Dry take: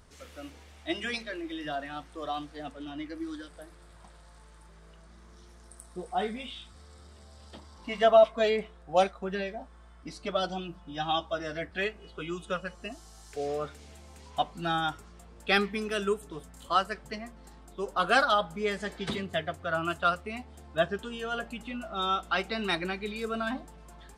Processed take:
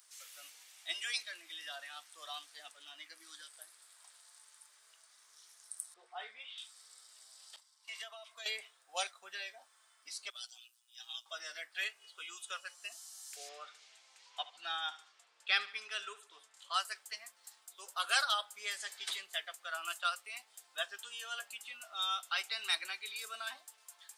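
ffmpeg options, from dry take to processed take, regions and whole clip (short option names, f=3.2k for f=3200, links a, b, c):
-filter_complex "[0:a]asettb=1/sr,asplit=3[a][b][c];[a]atrim=end=5.944[d];[b]atrim=start=5.94:end=6.58,asetpts=PTS-STARTPTS,afade=t=in:d=0.004:c=qsin,afade=t=out:st=0.636:d=0.004:c=qsin,highpass=250,lowpass=2.5k,bandreject=f=60:t=h:w=6,bandreject=f=120:t=h:w=6,bandreject=f=180:t=h:w=6,bandreject=f=240:t=h:w=6,bandreject=f=300:t=h:w=6,bandreject=f=360:t=h:w=6[e];[c]atrim=start=6.576[f];[d][e]acrossfade=d=0.004:c1=hsin:c2=qsin[g];[g][f]acrossfade=d=0.004:c1=qsin:c2=hsin,asettb=1/sr,asplit=3[h][i][j];[h]atrim=end=7.564[k];[i]atrim=start=7.56:end=8.46,asetpts=PTS-STARTPTS,afade=t=in:d=0.004:c=qsin,afade=t=out:st=0.896:d=0.004:c=qsin,agate=range=-33dB:threshold=-44dB:ratio=3:release=100:detection=peak,lowshelf=f=490:g=-10.5,acompressor=threshold=-36dB:ratio=4:attack=3.2:release=140:knee=1:detection=peak[l];[j]atrim=start=8.456[m];[k][l]acrossfade=d=0.004:c1=hsin:c2=qsin[n];[n][m]acrossfade=d=0.004:c1=qsin:c2=hsin,asettb=1/sr,asplit=3[o][p][q];[o]atrim=end=10.304[r];[p]atrim=start=10.3:end=11.26,asetpts=PTS-STARTPTS,afade=t=in:d=0.004:c=qsin,afade=t=out:st=0.956:d=0.004:c=qsin,aderivative,tremolo=f=120:d=0.621[s];[q]atrim=start=11.256[t];[r][s]acrossfade=d=0.004:c1=hsin:c2=qsin[u];[u][t]acrossfade=d=0.004:c1=qsin:c2=hsin,asettb=1/sr,asplit=3[v][w][x];[v]atrim=end=13.494[y];[w]atrim=start=13.49:end=16.74,asetpts=PTS-STARTPTS,afade=t=in:d=0.004:c=qsin,afade=t=out:st=3.246:d=0.004:c=qsin,highpass=110,lowpass=4k,aecho=1:1:73|146|219:0.15|0.0569|0.0216,atrim=end_sample=143325[z];[x]atrim=start=16.736[aa];[y][z]acrossfade=d=0.004:c1=hsin:c2=qsin[ab];[ab][aa]acrossfade=d=0.004:c1=qsin:c2=hsin,highpass=690,aderivative,volume=6dB"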